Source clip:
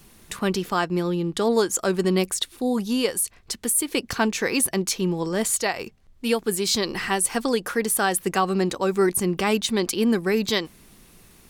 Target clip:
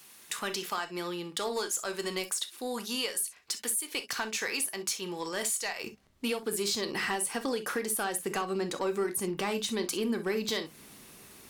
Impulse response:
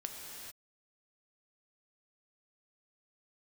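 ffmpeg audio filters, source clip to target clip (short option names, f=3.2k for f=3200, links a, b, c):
-filter_complex "[0:a]asetnsamples=n=441:p=0,asendcmd='5.84 highpass f 230',highpass=f=1.4k:p=1,acompressor=threshold=-29dB:ratio=6,asoftclip=type=tanh:threshold=-23dB[a];[1:a]atrim=start_sample=2205,atrim=end_sample=3087[b];[a][b]afir=irnorm=-1:irlink=0,volume=4.5dB"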